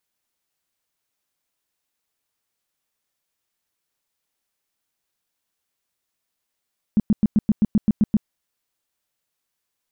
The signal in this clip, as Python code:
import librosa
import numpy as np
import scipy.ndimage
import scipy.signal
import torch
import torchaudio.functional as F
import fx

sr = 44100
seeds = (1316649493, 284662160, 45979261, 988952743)

y = fx.tone_burst(sr, hz=212.0, cycles=6, every_s=0.13, bursts=10, level_db=-12.0)